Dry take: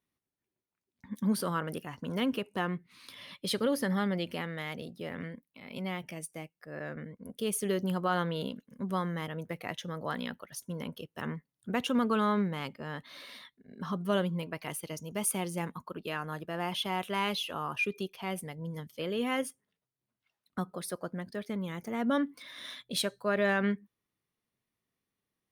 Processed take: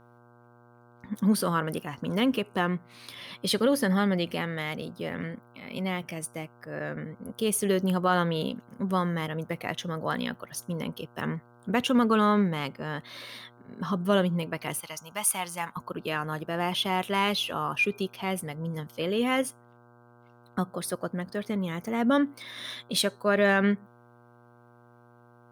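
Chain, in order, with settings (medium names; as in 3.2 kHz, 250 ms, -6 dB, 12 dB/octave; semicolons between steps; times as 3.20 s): mains buzz 120 Hz, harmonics 13, -62 dBFS -3 dB/octave; 14.80–15.77 s: resonant low shelf 610 Hz -12 dB, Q 1.5; trim +5.5 dB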